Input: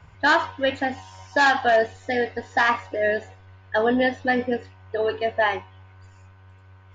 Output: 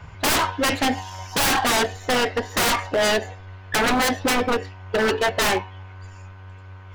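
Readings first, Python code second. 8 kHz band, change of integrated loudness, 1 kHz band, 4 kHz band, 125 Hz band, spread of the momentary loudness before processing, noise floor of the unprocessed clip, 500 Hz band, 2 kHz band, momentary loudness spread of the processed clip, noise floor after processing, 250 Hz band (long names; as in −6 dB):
can't be measured, +1.5 dB, 0.0 dB, +8.5 dB, +8.5 dB, 9 LU, −50 dBFS, −0.5 dB, −1.0 dB, 18 LU, −42 dBFS, +2.0 dB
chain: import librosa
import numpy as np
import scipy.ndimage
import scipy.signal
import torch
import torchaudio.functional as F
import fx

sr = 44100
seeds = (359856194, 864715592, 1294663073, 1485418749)

y = fx.tracing_dist(x, sr, depth_ms=0.28)
y = 10.0 ** (-23.0 / 20.0) * (np.abs((y / 10.0 ** (-23.0 / 20.0) + 3.0) % 4.0 - 2.0) - 1.0)
y = y * 10.0 ** (8.5 / 20.0)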